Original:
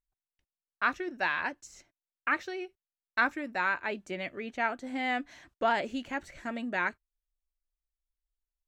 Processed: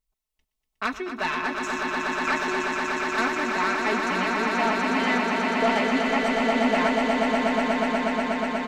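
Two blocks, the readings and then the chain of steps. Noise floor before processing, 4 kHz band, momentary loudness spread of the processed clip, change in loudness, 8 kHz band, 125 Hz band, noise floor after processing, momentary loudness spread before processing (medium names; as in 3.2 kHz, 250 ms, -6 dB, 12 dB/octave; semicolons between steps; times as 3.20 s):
under -85 dBFS, +12.5 dB, 5 LU, +8.5 dB, +15.0 dB, +14.0 dB, -81 dBFS, 10 LU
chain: peaking EQ 1.6 kHz -9 dB 0.21 oct; comb 4.6 ms, depth 84%; saturation -23 dBFS, distortion -12 dB; echo with a slow build-up 121 ms, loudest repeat 8, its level -5.5 dB; trim +4.5 dB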